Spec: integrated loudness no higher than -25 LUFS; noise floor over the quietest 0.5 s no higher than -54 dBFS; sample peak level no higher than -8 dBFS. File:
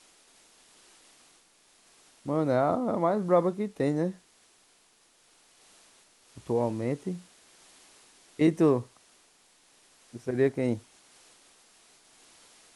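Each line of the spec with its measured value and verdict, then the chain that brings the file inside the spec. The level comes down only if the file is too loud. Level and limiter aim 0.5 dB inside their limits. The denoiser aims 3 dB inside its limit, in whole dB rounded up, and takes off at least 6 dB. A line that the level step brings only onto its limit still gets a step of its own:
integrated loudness -28.0 LUFS: OK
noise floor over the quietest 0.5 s -64 dBFS: OK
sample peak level -10.5 dBFS: OK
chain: none

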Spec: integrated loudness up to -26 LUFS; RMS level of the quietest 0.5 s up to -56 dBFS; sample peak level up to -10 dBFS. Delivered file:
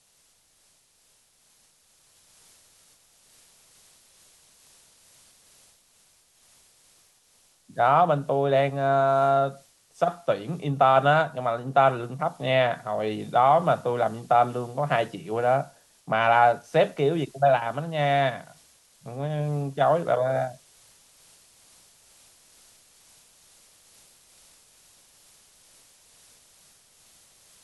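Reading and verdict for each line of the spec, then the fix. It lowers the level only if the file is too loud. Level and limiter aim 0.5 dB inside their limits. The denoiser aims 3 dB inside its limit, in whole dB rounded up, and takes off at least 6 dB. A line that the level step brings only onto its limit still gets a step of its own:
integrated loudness -23.5 LUFS: fail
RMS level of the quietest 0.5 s -63 dBFS: OK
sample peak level -7.5 dBFS: fail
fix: gain -3 dB

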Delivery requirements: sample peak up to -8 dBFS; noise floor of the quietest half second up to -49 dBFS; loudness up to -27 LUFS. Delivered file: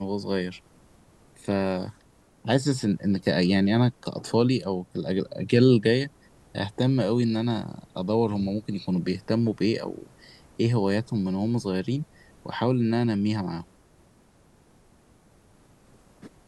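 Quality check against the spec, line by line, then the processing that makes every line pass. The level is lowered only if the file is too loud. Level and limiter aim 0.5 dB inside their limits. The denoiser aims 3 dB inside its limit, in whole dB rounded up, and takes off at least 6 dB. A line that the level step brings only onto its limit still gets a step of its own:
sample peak -6.5 dBFS: fail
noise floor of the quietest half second -58 dBFS: OK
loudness -25.5 LUFS: fail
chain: gain -2 dB

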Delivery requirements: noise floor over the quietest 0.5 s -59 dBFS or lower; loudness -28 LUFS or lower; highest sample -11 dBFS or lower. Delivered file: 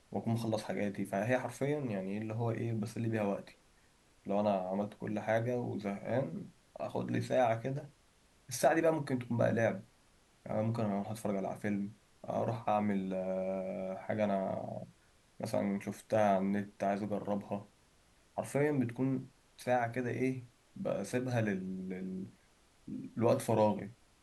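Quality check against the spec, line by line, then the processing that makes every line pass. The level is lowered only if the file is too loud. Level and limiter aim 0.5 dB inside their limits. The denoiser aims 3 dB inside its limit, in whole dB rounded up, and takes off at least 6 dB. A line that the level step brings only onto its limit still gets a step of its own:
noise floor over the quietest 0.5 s -67 dBFS: OK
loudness -35.5 LUFS: OK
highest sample -15.5 dBFS: OK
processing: none

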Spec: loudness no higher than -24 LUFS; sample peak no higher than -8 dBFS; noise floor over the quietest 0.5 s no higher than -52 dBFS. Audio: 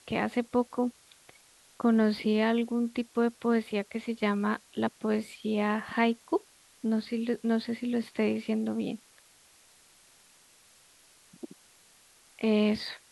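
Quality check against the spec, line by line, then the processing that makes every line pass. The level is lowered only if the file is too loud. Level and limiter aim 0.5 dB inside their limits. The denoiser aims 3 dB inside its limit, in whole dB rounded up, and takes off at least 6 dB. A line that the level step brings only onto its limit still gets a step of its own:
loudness -29.5 LUFS: OK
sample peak -13.0 dBFS: OK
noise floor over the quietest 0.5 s -60 dBFS: OK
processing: none

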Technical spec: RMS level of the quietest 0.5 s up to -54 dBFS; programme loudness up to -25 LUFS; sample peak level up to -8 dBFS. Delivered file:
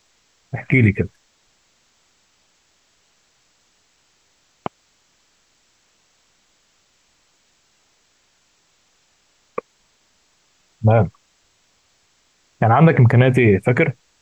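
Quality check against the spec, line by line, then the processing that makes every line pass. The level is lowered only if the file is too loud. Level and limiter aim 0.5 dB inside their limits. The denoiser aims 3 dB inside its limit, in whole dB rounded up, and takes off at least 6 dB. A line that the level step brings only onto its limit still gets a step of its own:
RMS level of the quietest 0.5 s -62 dBFS: OK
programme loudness -16.0 LUFS: fail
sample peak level -3.5 dBFS: fail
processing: gain -9.5 dB

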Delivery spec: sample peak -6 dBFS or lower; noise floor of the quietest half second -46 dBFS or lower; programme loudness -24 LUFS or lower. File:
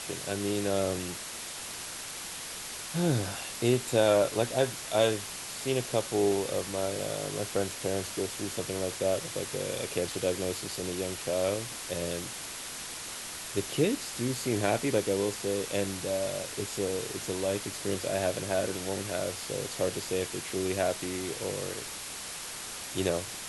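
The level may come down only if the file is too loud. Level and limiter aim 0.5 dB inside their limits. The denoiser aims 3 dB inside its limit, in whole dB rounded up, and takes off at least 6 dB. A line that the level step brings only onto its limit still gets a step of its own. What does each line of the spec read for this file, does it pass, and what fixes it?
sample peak -11.5 dBFS: OK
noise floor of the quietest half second -40 dBFS: fail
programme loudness -31.5 LUFS: OK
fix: denoiser 9 dB, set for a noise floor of -40 dBFS

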